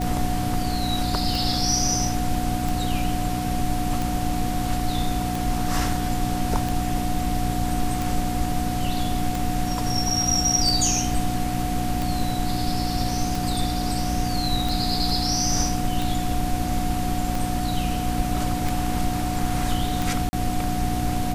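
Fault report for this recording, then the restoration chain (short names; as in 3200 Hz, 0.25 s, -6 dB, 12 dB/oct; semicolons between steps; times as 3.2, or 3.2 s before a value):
hum 60 Hz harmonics 5 -28 dBFS
tick 45 rpm
tone 730 Hz -29 dBFS
20.29–20.33 gap 40 ms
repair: de-click; notch 730 Hz, Q 30; de-hum 60 Hz, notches 5; interpolate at 20.29, 40 ms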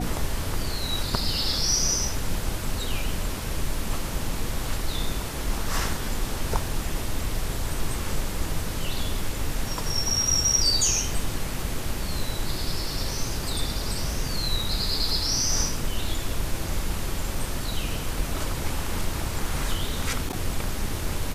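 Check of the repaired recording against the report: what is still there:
none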